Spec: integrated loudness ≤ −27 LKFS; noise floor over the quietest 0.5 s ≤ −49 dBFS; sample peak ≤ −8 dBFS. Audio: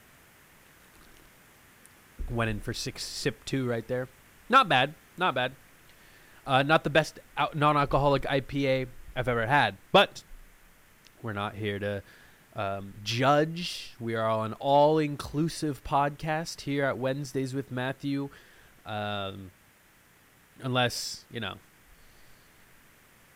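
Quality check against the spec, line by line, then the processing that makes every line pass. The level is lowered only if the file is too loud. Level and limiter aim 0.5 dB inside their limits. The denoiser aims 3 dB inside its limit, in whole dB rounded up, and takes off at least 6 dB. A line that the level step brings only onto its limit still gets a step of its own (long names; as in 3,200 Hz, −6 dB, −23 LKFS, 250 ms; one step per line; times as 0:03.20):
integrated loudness −28.0 LKFS: in spec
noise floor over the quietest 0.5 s −60 dBFS: in spec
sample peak −9.0 dBFS: in spec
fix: no processing needed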